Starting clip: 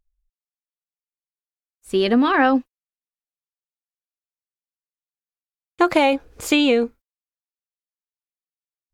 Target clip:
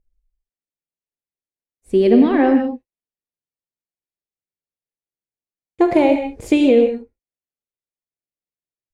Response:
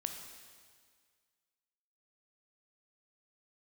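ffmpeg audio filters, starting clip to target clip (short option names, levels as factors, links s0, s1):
-filter_complex "[0:a]firequalizer=gain_entry='entry(470,0);entry(1300,-18);entry(2000,-8);entry(3000,-14)':delay=0.05:min_phase=1[s0];[1:a]atrim=start_sample=2205,atrim=end_sample=4410,asetrate=22050,aresample=44100[s1];[s0][s1]afir=irnorm=-1:irlink=0,volume=1.33"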